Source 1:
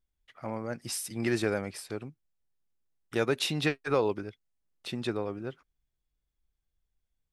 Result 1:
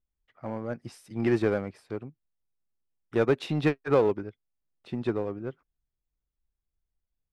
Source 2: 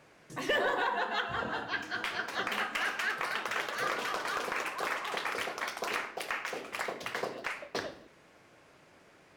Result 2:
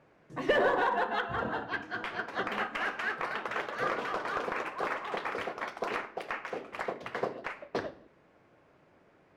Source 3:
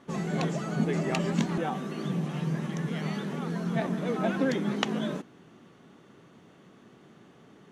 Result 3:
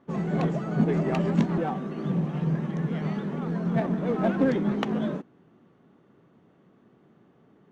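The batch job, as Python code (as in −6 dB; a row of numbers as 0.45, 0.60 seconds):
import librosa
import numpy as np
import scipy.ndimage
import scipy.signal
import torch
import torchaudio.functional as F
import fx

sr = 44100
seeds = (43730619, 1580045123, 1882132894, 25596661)

p1 = fx.lowpass(x, sr, hz=1100.0, slope=6)
p2 = np.clip(p1, -10.0 ** (-31.0 / 20.0), 10.0 ** (-31.0 / 20.0))
p3 = p1 + (p2 * 10.0 ** (-4.5 / 20.0))
p4 = fx.upward_expand(p3, sr, threshold_db=-44.0, expansion=1.5)
y = p4 * 10.0 ** (4.0 / 20.0)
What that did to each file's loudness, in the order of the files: +3.0, +0.5, +3.0 LU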